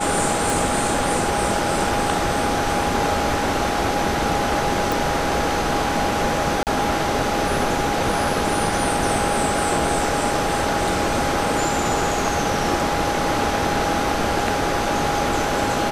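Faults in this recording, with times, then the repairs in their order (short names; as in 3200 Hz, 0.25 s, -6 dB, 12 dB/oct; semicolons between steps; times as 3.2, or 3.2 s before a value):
tone 820 Hz -25 dBFS
0.5 pop
4.92 pop
6.63–6.67 gap 38 ms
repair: de-click; notch 820 Hz, Q 30; interpolate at 6.63, 38 ms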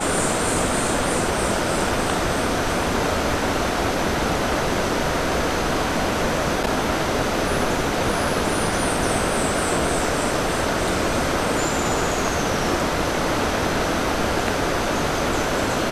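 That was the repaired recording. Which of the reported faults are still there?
none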